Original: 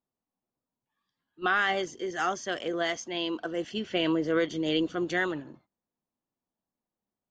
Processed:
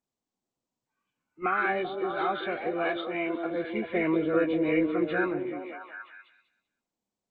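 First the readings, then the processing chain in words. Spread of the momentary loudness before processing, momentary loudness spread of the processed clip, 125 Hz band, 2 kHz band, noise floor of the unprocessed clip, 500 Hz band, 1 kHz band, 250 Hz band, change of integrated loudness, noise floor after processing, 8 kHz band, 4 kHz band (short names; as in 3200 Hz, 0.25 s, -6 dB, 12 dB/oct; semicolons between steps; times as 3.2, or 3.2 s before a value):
7 LU, 13 LU, +0.5 dB, -1.0 dB, under -85 dBFS, +2.5 dB, +1.0 dB, +2.0 dB, +0.5 dB, under -85 dBFS, n/a, -10.0 dB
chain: nonlinear frequency compression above 1200 Hz 1.5:1; delay with a stepping band-pass 0.194 s, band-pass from 340 Hz, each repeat 0.7 oct, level -1.5 dB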